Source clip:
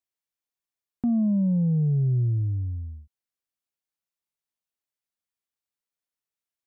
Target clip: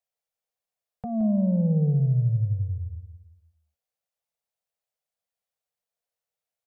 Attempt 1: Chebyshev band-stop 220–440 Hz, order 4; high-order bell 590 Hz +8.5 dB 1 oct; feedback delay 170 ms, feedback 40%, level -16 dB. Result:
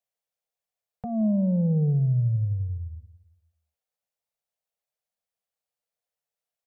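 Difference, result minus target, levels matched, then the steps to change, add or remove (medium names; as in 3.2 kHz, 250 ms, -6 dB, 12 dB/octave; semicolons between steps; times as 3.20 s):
echo-to-direct -7.5 dB
change: feedback delay 170 ms, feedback 40%, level -8.5 dB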